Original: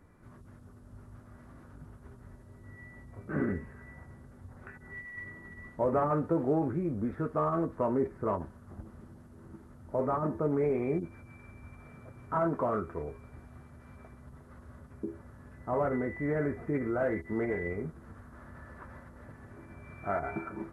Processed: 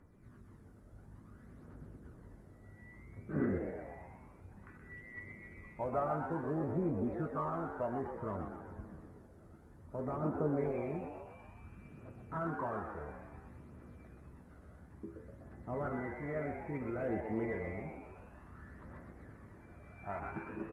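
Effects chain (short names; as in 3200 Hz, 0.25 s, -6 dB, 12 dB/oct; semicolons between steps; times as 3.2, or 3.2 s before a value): phaser 0.58 Hz, delay 1.6 ms, feedback 50%; frequency-shifting echo 0.124 s, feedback 56%, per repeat +110 Hz, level -7 dB; gain -8.5 dB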